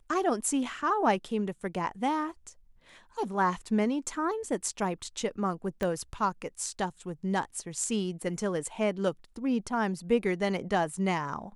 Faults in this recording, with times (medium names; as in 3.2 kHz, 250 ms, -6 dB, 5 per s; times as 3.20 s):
5.83 s: pop -18 dBFS